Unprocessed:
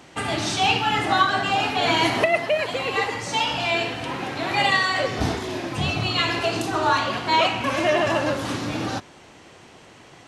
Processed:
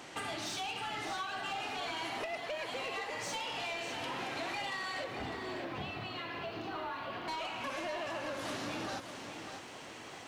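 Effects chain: bass shelf 220 Hz -10.5 dB; compression 10:1, threshold -34 dBFS, peak gain reduction 20 dB; saturation -33 dBFS, distortion -15 dB; 5.04–7.28 s: distance through air 260 m; bit-crushed delay 603 ms, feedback 35%, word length 11-bit, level -8 dB

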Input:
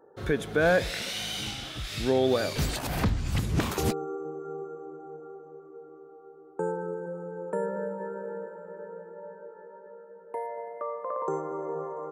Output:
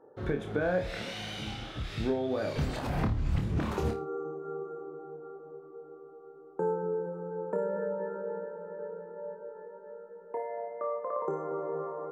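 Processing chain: low-pass 1.3 kHz 6 dB/octave; compression, threshold -27 dBFS, peak gain reduction 7.5 dB; flutter echo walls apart 4.7 m, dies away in 0.27 s

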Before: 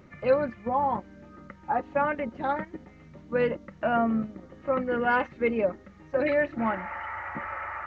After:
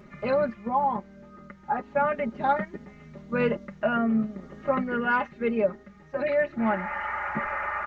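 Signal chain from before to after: comb 4.9 ms, depth 74%; gain riding within 4 dB 0.5 s

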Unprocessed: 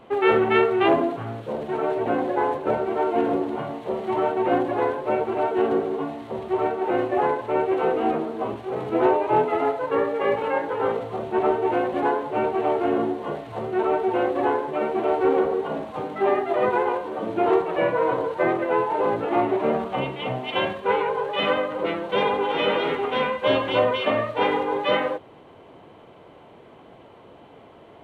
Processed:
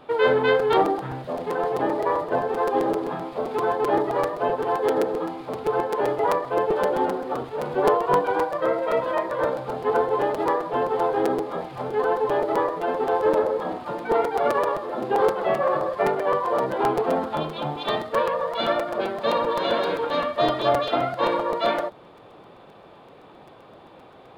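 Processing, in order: dynamic bell 2.2 kHz, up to -8 dB, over -45 dBFS, Q 2.1; tape speed +15%; crackling interface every 0.13 s, samples 256, repeat, from 0.59 s

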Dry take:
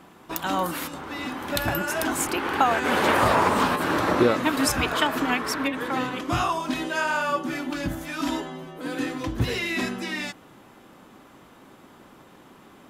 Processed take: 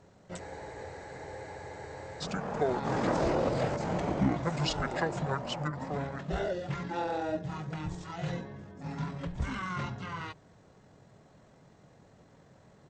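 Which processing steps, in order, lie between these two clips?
pitch shift -10.5 st; spectral freeze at 0.41 s, 1.80 s; trim -7.5 dB

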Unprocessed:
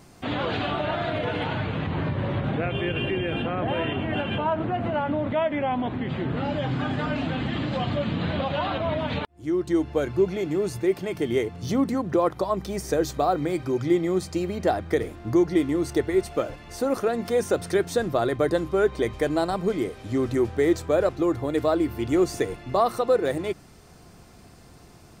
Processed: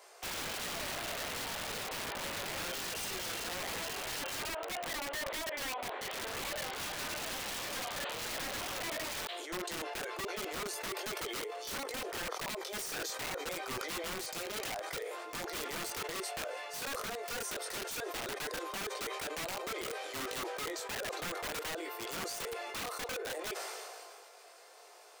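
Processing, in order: steep high-pass 430 Hz 48 dB/octave; chorus 0.59 Hz, delay 18 ms, depth 2.9 ms; compression 16:1, threshold -35 dBFS, peak gain reduction 17 dB; feedback echo behind a high-pass 329 ms, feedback 77%, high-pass 3.2 kHz, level -24 dB; integer overflow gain 35.5 dB; decay stretcher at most 23 dB/s; trim +1.5 dB

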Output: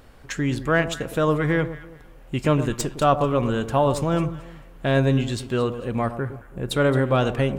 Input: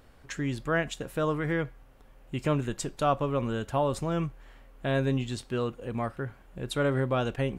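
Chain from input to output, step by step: tracing distortion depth 0.021 ms; 6.11–6.71 s: peaking EQ 3.9 kHz -8 dB 1.5 oct; on a send: echo whose repeats swap between lows and highs 110 ms, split 1.1 kHz, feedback 51%, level -10.5 dB; on the sum: trim +7 dB

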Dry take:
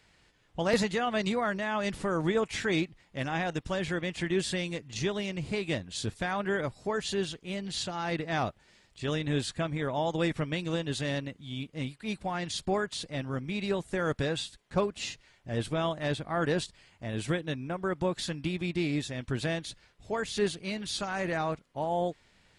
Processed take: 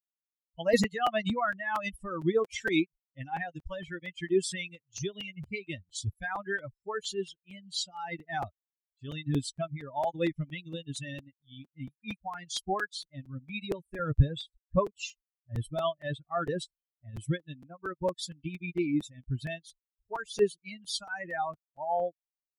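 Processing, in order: expander on every frequency bin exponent 3; 13.99–14.76 s: RIAA curve playback; crackling interface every 0.23 s, samples 256, repeat, from 0.83 s; trim +7 dB

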